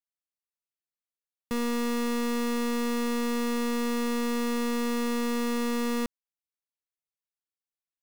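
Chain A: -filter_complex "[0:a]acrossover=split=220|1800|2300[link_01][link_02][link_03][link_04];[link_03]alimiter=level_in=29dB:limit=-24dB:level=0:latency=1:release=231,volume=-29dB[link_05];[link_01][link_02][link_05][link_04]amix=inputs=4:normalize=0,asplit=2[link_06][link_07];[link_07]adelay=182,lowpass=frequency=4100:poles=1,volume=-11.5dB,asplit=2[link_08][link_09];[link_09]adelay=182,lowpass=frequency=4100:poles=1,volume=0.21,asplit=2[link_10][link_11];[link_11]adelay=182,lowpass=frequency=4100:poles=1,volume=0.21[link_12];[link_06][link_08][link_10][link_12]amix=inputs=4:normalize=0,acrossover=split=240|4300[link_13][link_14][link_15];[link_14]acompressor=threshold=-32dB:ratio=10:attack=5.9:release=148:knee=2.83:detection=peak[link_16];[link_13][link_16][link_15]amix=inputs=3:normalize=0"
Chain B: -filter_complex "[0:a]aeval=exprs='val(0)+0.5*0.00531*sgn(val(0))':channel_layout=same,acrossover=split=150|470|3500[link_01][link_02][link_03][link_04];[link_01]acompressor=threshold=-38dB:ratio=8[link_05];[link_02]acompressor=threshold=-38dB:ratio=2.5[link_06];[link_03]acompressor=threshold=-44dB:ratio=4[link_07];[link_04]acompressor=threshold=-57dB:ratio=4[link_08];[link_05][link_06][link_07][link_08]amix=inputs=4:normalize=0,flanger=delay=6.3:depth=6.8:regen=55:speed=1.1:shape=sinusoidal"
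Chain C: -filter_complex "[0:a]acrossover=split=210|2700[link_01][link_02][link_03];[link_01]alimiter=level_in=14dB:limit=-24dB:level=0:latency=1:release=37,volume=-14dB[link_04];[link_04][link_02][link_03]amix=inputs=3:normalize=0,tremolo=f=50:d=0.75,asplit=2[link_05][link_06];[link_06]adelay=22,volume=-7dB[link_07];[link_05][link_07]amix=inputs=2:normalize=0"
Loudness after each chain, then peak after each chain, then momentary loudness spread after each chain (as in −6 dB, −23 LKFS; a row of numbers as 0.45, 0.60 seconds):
−31.5, −39.5, −33.5 LKFS; −22.5, −27.0, −20.0 dBFS; 3, 2, 2 LU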